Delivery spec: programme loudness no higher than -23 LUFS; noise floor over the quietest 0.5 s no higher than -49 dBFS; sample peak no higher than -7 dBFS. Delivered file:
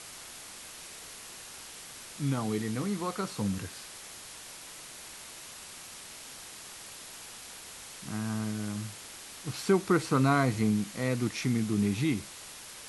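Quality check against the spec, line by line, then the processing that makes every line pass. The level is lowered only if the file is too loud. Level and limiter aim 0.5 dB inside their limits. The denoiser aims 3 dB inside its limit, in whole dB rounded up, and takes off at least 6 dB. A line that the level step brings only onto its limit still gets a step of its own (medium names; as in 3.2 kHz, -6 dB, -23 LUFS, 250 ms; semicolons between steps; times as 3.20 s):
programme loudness -32.5 LUFS: pass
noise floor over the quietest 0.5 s -46 dBFS: fail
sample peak -13.0 dBFS: pass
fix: noise reduction 6 dB, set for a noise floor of -46 dBFS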